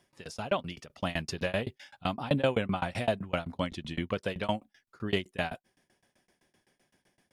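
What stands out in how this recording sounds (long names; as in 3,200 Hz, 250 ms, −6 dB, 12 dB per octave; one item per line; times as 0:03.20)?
tremolo saw down 7.8 Hz, depth 100%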